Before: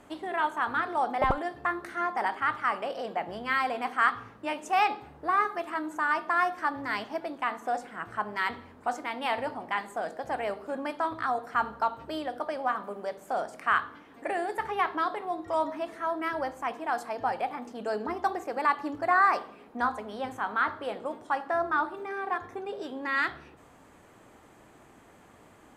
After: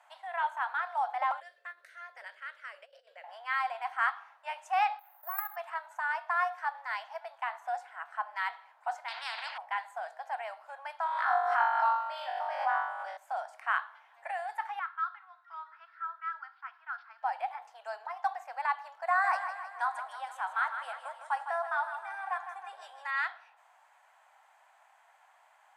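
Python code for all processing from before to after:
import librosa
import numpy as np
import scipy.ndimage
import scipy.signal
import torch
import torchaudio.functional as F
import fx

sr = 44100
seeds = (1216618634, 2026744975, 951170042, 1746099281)

y = fx.chain(x, sr, fx.curve_eq(hz=(330.0, 540.0, 790.0, 1600.0, 4000.0), db=(0, 6, -30, -9, -4)),
    fx.over_compress(threshold_db=-36.0, ratio=-0.5), at=(1.4, 3.24))
y = fx.chain(y, sr, fx.bass_treble(bass_db=-3, treble_db=-3),
    fx.level_steps(step_db=11),
    fx.resample_bad(factor=3, down='none', up='zero_stuff'), at=(4.99, 5.56))
y = fx.chain(y, sr, fx.lowpass(hz=2900.0, slope=12),
    fx.spectral_comp(ratio=10.0), at=(9.08, 9.58))
y = fx.chain(y, sr, fx.high_shelf(hz=8200.0, db=-10.5),
    fx.room_flutter(wall_m=3.6, rt60_s=0.84),
    fx.pre_swell(db_per_s=35.0), at=(11.04, 13.17))
y = fx.chain(y, sr, fx.ladder_highpass(hz=1300.0, resonance_pct=80),
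    fx.resample_bad(factor=4, down='none', up='filtered'), at=(14.79, 17.23))
y = fx.chain(y, sr, fx.peak_eq(hz=9000.0, db=12.5, octaves=0.71),
    fx.echo_feedback(ms=157, feedback_pct=54, wet_db=-9), at=(19.07, 23.11))
y = scipy.signal.sosfilt(scipy.signal.butter(8, 710.0, 'highpass', fs=sr, output='sos'), y)
y = fx.high_shelf(y, sr, hz=2700.0, db=-10.0)
y = fx.notch(y, sr, hz=1200.0, q=9.6)
y = y * librosa.db_to_amplitude(-1.0)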